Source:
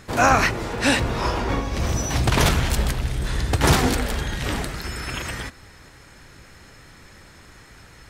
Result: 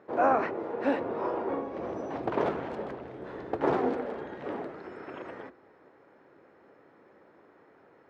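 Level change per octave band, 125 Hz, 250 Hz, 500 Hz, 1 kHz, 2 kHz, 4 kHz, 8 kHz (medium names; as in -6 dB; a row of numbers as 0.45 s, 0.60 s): -23.5 dB, -8.0 dB, -3.0 dB, -7.5 dB, -15.5 dB, -27.0 dB, under -35 dB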